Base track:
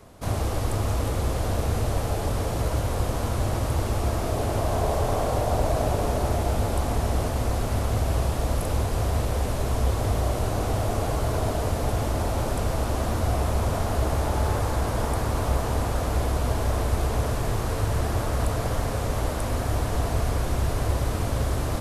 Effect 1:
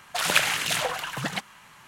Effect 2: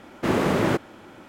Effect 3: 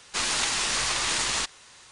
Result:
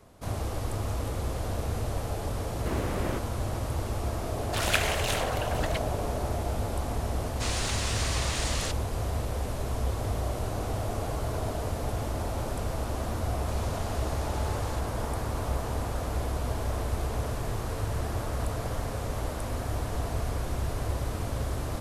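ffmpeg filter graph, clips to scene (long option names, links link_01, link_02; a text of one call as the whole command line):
ffmpeg -i bed.wav -i cue0.wav -i cue1.wav -i cue2.wav -filter_complex "[1:a]asplit=2[link_01][link_02];[3:a]asplit=2[link_03][link_04];[0:a]volume=-6dB[link_05];[link_03]asoftclip=type=tanh:threshold=-15dB[link_06];[link_04]acompressor=threshold=-29dB:ratio=6:attack=3.2:release=140:knee=1:detection=peak[link_07];[link_02]acompressor=threshold=-46dB:ratio=6:attack=3.2:release=140:knee=1:detection=peak[link_08];[2:a]atrim=end=1.28,asetpts=PTS-STARTPTS,volume=-12dB,afade=type=in:duration=0.004:curve=hsin,afade=type=out:start_time=1.276:duration=0.004:curve=hsin,adelay=2420[link_09];[link_01]atrim=end=1.87,asetpts=PTS-STARTPTS,volume=-5.5dB,afade=type=in:duration=0.004:curve=hsin,afade=type=out:start_time=1.866:duration=0.004:curve=hsin,adelay=4380[link_10];[link_06]atrim=end=1.91,asetpts=PTS-STARTPTS,volume=-6.5dB,afade=type=in:duration=0.004:curve=hsin,afade=type=out:start_time=1.906:duration=0.004:curve=hsin,adelay=7260[link_11];[link_07]atrim=end=1.91,asetpts=PTS-STARTPTS,volume=-16dB,afade=type=in:duration=0.004:curve=hsin,afade=type=out:start_time=1.906:duration=0.004:curve=hsin,adelay=13340[link_12];[link_08]atrim=end=1.87,asetpts=PTS-STARTPTS,volume=-15dB,afade=type=in:duration=0.004:curve=hsin,afade=type=out:start_time=1.866:duration=0.004:curve=hsin,adelay=16240[link_13];[link_05][link_09][link_10][link_11][link_12][link_13]amix=inputs=6:normalize=0" out.wav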